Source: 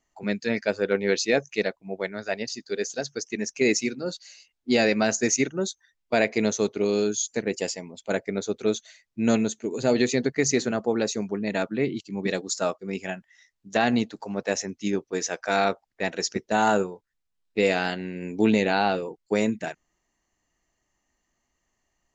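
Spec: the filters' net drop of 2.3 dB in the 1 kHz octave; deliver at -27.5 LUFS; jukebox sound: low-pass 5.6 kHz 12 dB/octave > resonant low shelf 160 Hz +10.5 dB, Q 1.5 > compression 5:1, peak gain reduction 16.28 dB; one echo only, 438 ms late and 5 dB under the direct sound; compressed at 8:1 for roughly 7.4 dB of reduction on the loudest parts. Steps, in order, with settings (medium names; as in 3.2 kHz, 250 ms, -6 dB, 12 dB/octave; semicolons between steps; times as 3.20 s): peaking EQ 1 kHz -3 dB; compression 8:1, threshold -24 dBFS; low-pass 5.6 kHz 12 dB/octave; resonant low shelf 160 Hz +10.5 dB, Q 1.5; delay 438 ms -5 dB; compression 5:1, threshold -39 dBFS; trim +14.5 dB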